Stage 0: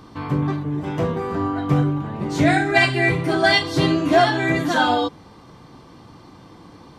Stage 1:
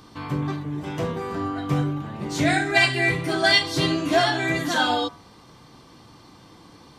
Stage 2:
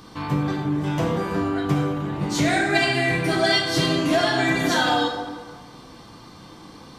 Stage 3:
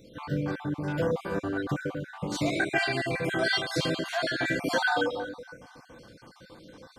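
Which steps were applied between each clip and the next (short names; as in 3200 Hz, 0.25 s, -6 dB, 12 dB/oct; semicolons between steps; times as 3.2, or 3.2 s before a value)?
high shelf 2200 Hz +8.5 dB; de-hum 88.64 Hz, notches 29; gain -5 dB
compressor, threshold -21 dBFS, peak gain reduction 8 dB; plate-style reverb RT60 1.5 s, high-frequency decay 0.6×, DRR 2 dB; gain +3 dB
random spectral dropouts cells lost 37%; small resonant body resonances 530/1500 Hz, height 12 dB; gain -7 dB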